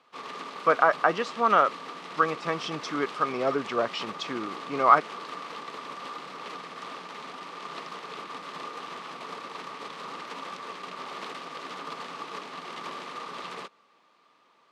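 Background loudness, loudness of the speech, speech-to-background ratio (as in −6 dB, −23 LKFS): −39.0 LKFS, −25.5 LKFS, 13.5 dB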